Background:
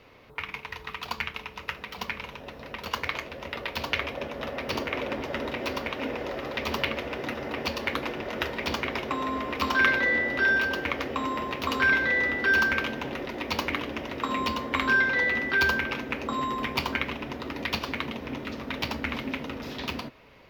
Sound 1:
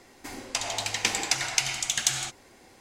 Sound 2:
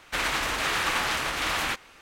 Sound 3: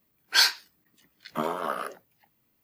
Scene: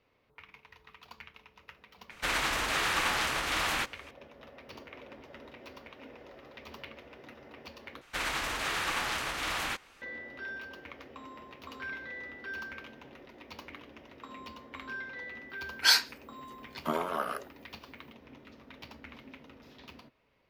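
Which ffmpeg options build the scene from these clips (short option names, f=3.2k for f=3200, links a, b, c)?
-filter_complex "[2:a]asplit=2[a][b];[0:a]volume=-18dB,asplit=2[c][d];[c]atrim=end=8.014[e];[b]atrim=end=2.01,asetpts=PTS-STARTPTS,volume=-6dB[f];[d]atrim=start=10.016[g];[a]atrim=end=2.01,asetpts=PTS-STARTPTS,volume=-3dB,afade=t=in:d=0.004:c=hsin,afade=t=out:st=2.006:d=0.004:c=hsin,adelay=2100[h];[3:a]atrim=end=2.63,asetpts=PTS-STARTPTS,volume=-2.5dB,afade=t=in:d=0.004:c=hsin,afade=t=out:st=2.626:d=0.004:c=hsin,adelay=15500[i];[e][f]acrossfade=d=0.004:c1=hsin:c2=hsin[j];[j][g]acrossfade=d=0.004:c1=hsin:c2=hsin[k];[k][h][i]amix=inputs=3:normalize=0"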